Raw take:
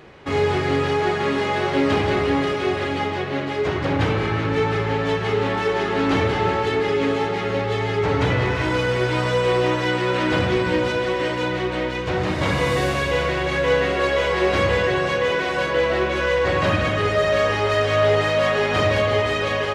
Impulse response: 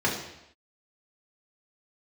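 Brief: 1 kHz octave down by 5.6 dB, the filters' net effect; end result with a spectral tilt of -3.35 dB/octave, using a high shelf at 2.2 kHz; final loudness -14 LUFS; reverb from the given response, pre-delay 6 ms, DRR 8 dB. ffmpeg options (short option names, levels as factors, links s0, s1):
-filter_complex "[0:a]equalizer=f=1000:t=o:g=-9,highshelf=f=2200:g=7.5,asplit=2[s0][s1];[1:a]atrim=start_sample=2205,adelay=6[s2];[s1][s2]afir=irnorm=-1:irlink=0,volume=0.0891[s3];[s0][s3]amix=inputs=2:normalize=0,volume=2"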